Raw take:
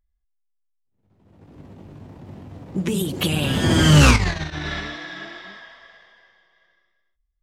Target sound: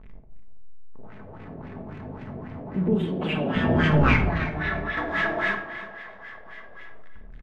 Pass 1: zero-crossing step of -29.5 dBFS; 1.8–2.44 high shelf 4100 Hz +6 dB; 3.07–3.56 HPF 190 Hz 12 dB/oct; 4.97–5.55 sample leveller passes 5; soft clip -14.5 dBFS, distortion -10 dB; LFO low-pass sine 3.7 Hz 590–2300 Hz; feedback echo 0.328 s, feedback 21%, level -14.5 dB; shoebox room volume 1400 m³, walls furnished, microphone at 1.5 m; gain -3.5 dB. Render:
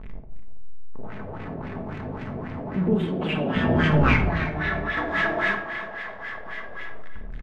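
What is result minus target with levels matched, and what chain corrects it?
zero-crossing step: distortion +8 dB
zero-crossing step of -38 dBFS; 1.8–2.44 high shelf 4100 Hz +6 dB; 3.07–3.56 HPF 190 Hz 12 dB/oct; 4.97–5.55 sample leveller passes 5; soft clip -14.5 dBFS, distortion -10 dB; LFO low-pass sine 3.7 Hz 590–2300 Hz; feedback echo 0.328 s, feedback 21%, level -14.5 dB; shoebox room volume 1400 m³, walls furnished, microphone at 1.5 m; gain -3.5 dB

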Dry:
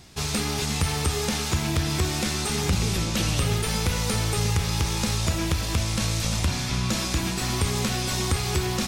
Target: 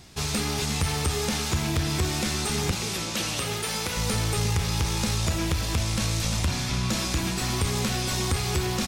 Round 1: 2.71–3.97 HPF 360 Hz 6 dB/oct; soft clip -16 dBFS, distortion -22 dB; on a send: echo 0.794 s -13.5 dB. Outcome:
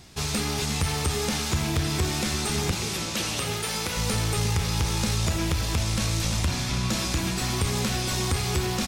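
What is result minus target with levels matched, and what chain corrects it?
echo-to-direct +11 dB
2.71–3.97 HPF 360 Hz 6 dB/oct; soft clip -16 dBFS, distortion -22 dB; on a send: echo 0.794 s -24.5 dB

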